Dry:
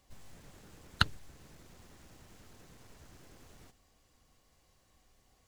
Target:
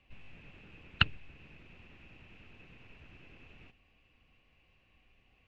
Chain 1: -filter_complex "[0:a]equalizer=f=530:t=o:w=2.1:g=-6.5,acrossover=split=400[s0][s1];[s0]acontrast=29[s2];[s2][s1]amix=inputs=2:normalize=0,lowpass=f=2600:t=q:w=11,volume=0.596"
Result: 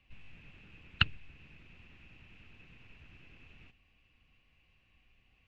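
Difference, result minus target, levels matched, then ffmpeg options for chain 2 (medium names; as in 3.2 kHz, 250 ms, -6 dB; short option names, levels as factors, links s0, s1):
500 Hz band -5.0 dB
-filter_complex "[0:a]acrossover=split=400[s0][s1];[s0]acontrast=29[s2];[s2][s1]amix=inputs=2:normalize=0,lowpass=f=2600:t=q:w=11,volume=0.596"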